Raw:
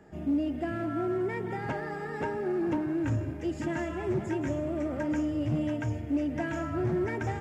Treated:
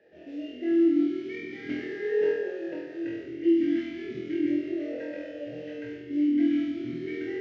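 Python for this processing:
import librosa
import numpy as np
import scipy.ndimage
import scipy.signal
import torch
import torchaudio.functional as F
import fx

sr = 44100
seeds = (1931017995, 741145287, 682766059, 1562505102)

p1 = fx.cvsd(x, sr, bps=32000)
p2 = fx.rider(p1, sr, range_db=10, speed_s=0.5)
p3 = p2 + fx.room_flutter(p2, sr, wall_m=4.1, rt60_s=0.92, dry=0)
p4 = fx.vowel_sweep(p3, sr, vowels='e-i', hz=0.37)
y = p4 * 10.0 ** (6.0 / 20.0)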